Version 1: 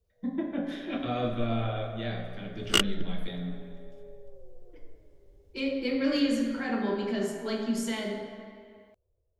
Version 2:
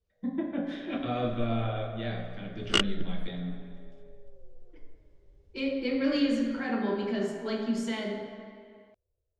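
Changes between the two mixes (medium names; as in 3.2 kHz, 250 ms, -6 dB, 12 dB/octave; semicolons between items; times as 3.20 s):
first sound -6.0 dB; master: add distance through air 72 m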